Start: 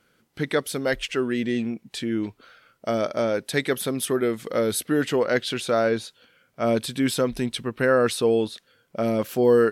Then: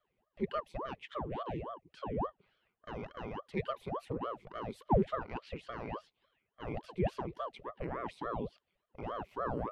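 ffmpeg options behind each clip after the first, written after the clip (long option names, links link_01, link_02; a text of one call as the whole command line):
ffmpeg -i in.wav -filter_complex "[0:a]asplit=3[link_01][link_02][link_03];[link_01]bandpass=frequency=300:width_type=q:width=8,volume=0dB[link_04];[link_02]bandpass=frequency=870:width_type=q:width=8,volume=-6dB[link_05];[link_03]bandpass=frequency=2240:width_type=q:width=8,volume=-9dB[link_06];[link_04][link_05][link_06]amix=inputs=3:normalize=0,aeval=exprs='val(0)*sin(2*PI*510*n/s+510*0.85/3.5*sin(2*PI*3.5*n/s))':channel_layout=same" out.wav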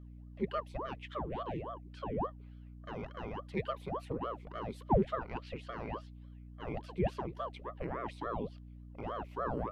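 ffmpeg -i in.wav -af "aeval=exprs='val(0)+0.00355*(sin(2*PI*60*n/s)+sin(2*PI*2*60*n/s)/2+sin(2*PI*3*60*n/s)/3+sin(2*PI*4*60*n/s)/4+sin(2*PI*5*60*n/s)/5)':channel_layout=same" out.wav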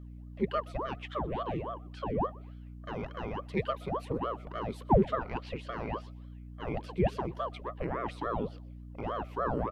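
ffmpeg -i in.wav -filter_complex "[0:a]asplit=3[link_01][link_02][link_03];[link_02]adelay=124,afreqshift=55,volume=-24dB[link_04];[link_03]adelay=248,afreqshift=110,volume=-34.2dB[link_05];[link_01][link_04][link_05]amix=inputs=3:normalize=0,volume=4.5dB" out.wav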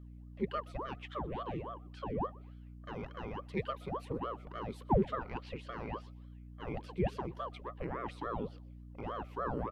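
ffmpeg -i in.wav -af "equalizer=frequency=650:width_type=o:width=0.21:gain=-5.5,volume=-4.5dB" out.wav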